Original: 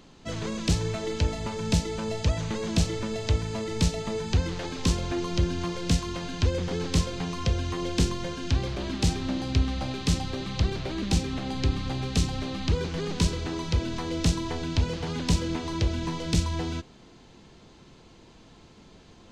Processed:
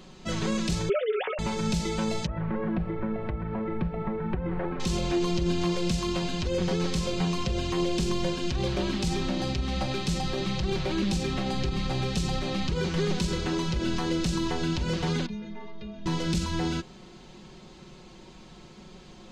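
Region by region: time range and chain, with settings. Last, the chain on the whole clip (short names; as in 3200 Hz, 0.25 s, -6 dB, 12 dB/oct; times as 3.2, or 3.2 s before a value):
0.89–1.39 sine-wave speech + doubler 15 ms -13.5 dB
2.26–4.8 LPF 1800 Hz 24 dB/oct + compressor 4:1, threshold -29 dBFS
15.26–16.06 air absorption 320 m + metallic resonator 210 Hz, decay 0.56 s, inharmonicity 0.008 + fast leveller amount 70%
whole clip: limiter -22 dBFS; comb 5.4 ms, depth 61%; gain +2.5 dB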